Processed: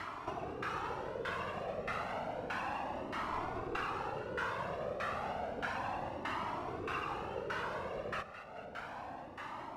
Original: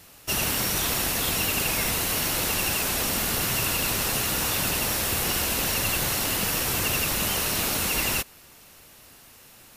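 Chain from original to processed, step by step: high-pass 220 Hz 6 dB/octave; treble shelf 2.1 kHz +8.5 dB; compression 4:1, threshold -43 dBFS, peak gain reduction 22 dB; 3.32–3.81 s: word length cut 6-bit, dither none; LFO low-pass saw down 1.6 Hz 460–1500 Hz; two-band feedback delay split 970 Hz, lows 89 ms, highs 215 ms, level -12 dB; Schroeder reverb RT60 3 s, combs from 26 ms, DRR 15 dB; Shepard-style flanger rising 0.31 Hz; trim +15 dB

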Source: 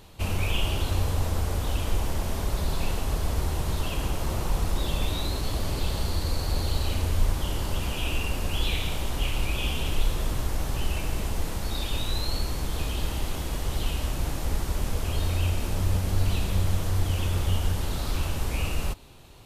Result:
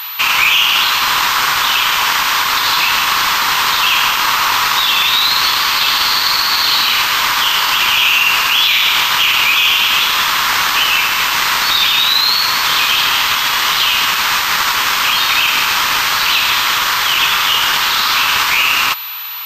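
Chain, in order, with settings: steep high-pass 1 kHz 48 dB/octave; loudness maximiser +30.5 dB; class-D stage that switches slowly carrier 12 kHz; trim -1 dB

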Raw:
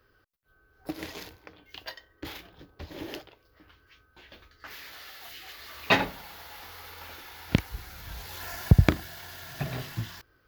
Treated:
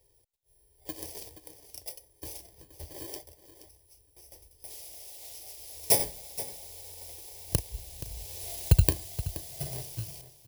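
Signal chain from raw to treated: bit-reversed sample order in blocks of 32 samples; static phaser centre 560 Hz, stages 4; delay 475 ms -14 dB

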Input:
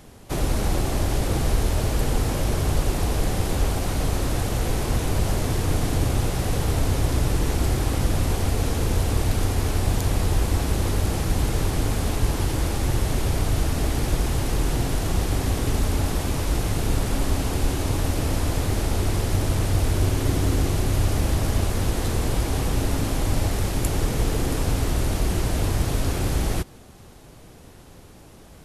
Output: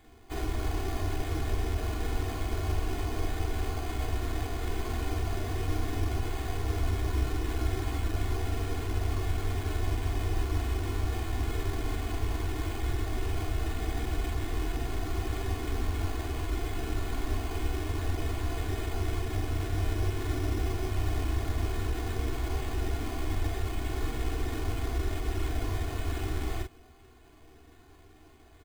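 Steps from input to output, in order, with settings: pre-emphasis filter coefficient 0.8; band-stop 590 Hz, Q 14; comb 2.8 ms, depth 96%; early reflections 13 ms -5 dB, 45 ms -4 dB; careless resampling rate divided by 8×, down filtered, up hold

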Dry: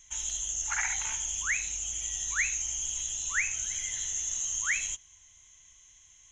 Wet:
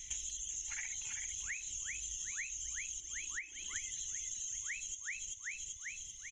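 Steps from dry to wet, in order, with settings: 3.00–3.76 s: cabinet simulation 290–2800 Hz, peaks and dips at 320 Hz +5 dB, 470 Hz -9 dB, 740 Hz -3 dB, 1.1 kHz +3 dB, 1.6 kHz -5 dB, 2.5 kHz -10 dB; feedback delay 387 ms, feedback 41%, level -5.5 dB; reverb removal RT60 0.97 s; high-order bell 950 Hz -15 dB; compression 10:1, threshold -48 dBFS, peak gain reduction 22 dB; trim +8.5 dB

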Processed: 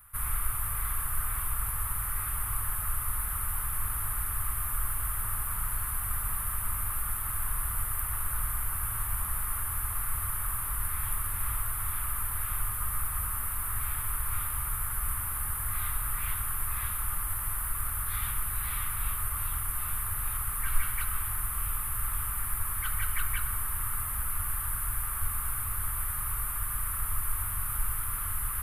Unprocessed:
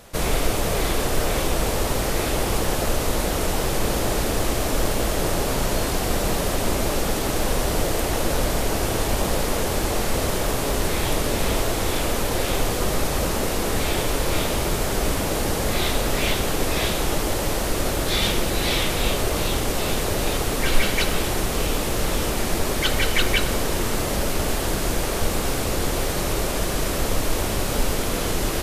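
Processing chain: FFT filter 100 Hz 0 dB, 170 Hz -15 dB, 380 Hz -27 dB, 600 Hz -26 dB, 1.2 kHz +4 dB, 6.1 kHz -26 dB, 10 kHz +10 dB; trim -8.5 dB

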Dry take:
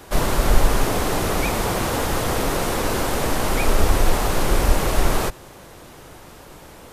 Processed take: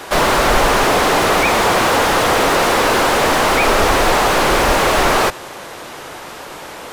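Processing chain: overdrive pedal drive 21 dB, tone 4.6 kHz, clips at -1.5 dBFS; slew-rate limiter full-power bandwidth 560 Hz

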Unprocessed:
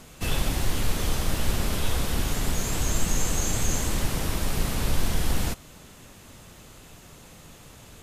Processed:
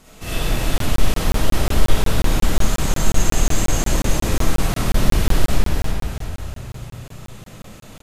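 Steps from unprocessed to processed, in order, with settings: frequency-shifting echo 325 ms, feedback 52%, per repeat -31 Hz, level -5.5 dB; algorithmic reverb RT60 2 s, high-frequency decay 0.45×, pre-delay 10 ms, DRR -9.5 dB; crackling interface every 0.18 s, samples 1024, zero, from 0.78 s; trim -4 dB

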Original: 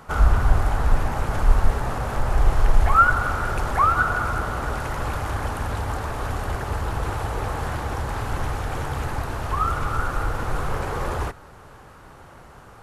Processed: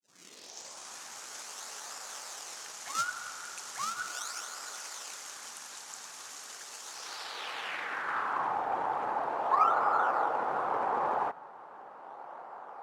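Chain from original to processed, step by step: tape start-up on the opening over 1.00 s; Bessel high-pass 250 Hz, order 6; in parallel at -6 dB: decimation with a swept rate 36×, swing 160% 0.38 Hz; on the sum: band-pass sweep 6.5 kHz -> 820 Hz, 6.90–8.60 s; trim +4 dB

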